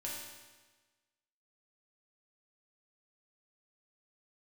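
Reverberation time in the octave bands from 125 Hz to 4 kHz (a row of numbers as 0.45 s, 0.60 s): 1.3 s, 1.3 s, 1.3 s, 1.3 s, 1.3 s, 1.2 s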